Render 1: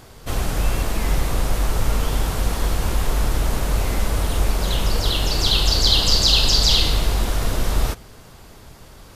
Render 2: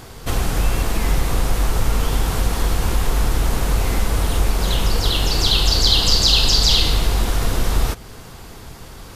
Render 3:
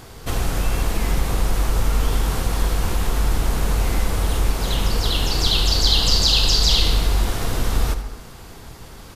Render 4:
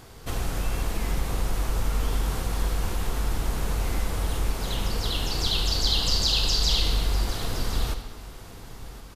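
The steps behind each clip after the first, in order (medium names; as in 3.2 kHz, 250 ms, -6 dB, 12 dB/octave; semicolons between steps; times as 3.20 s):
band-stop 600 Hz, Q 12; in parallel at +2 dB: compression, threshold -26 dBFS, peak gain reduction 14.5 dB; on the sum: trim -1 dB
delay 79 ms -13 dB; reverberation RT60 0.85 s, pre-delay 103 ms, DRR 12 dB; trim -2.5 dB
delay 1062 ms -15.5 dB; trim -6.5 dB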